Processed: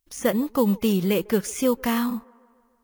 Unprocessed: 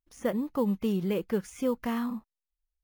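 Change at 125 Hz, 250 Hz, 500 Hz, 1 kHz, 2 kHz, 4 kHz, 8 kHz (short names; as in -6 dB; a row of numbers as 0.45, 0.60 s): +6.5, +6.5, +7.0, +7.5, +10.0, +12.5, +15.5 dB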